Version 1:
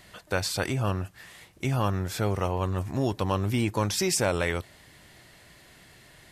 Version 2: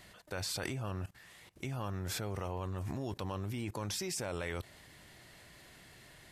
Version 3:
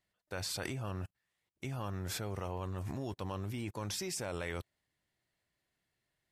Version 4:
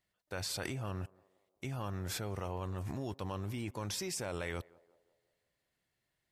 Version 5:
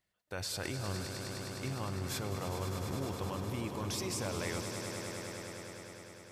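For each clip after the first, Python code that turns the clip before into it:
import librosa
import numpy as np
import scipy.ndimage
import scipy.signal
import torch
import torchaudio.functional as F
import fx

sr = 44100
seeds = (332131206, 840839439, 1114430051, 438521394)

y1 = fx.level_steps(x, sr, step_db=19)
y2 = fx.upward_expand(y1, sr, threshold_db=-56.0, expansion=2.5)
y2 = y2 * 10.0 ** (1.5 / 20.0)
y3 = fx.echo_banded(y2, sr, ms=176, feedback_pct=53, hz=580.0, wet_db=-21)
y4 = fx.echo_swell(y3, sr, ms=102, loudest=5, wet_db=-10.0)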